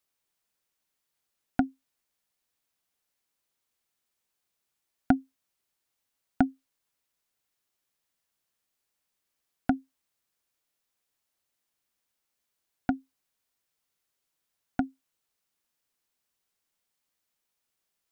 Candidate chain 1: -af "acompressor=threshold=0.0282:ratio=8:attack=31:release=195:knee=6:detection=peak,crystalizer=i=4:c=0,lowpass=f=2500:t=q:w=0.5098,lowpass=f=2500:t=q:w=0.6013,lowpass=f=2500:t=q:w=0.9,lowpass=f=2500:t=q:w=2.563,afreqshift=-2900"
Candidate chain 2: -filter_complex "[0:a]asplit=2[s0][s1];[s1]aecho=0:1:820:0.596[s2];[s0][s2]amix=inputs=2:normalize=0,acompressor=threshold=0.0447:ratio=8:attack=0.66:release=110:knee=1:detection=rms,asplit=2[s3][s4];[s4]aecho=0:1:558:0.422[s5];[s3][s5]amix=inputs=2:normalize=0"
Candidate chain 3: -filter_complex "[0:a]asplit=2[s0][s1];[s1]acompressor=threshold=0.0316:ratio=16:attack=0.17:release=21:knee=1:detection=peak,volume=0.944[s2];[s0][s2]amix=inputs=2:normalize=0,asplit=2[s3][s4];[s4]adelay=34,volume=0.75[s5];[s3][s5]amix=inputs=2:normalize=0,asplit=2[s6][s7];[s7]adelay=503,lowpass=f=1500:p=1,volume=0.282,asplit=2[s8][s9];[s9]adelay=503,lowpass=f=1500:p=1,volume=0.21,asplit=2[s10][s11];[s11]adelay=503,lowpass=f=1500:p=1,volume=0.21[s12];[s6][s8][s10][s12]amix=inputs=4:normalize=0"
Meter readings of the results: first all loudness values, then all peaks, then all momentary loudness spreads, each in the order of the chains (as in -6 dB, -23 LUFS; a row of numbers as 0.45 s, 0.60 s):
-33.5 LUFS, -46.0 LUFS, -29.5 LUFS; -11.0 dBFS, -19.0 dBFS, -7.5 dBFS; 6 LU, 10 LU, 21 LU